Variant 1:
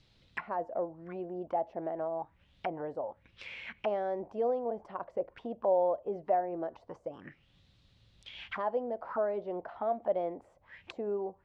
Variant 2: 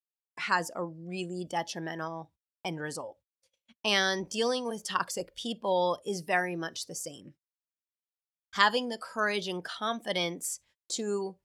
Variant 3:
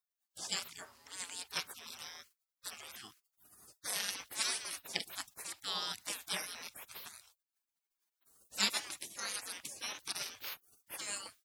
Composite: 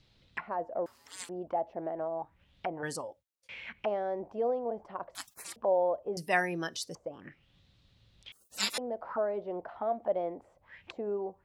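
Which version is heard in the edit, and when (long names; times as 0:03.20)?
1
0:00.86–0:01.29: punch in from 3
0:02.83–0:03.49: punch in from 2
0:05.15–0:05.56: punch in from 3
0:06.17–0:06.95: punch in from 2
0:08.32–0:08.78: punch in from 3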